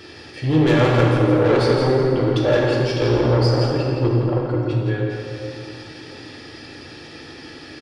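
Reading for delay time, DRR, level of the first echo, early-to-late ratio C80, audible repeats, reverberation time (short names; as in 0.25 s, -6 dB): 0.167 s, -3.0 dB, -6.0 dB, 0.0 dB, 1, 2.5 s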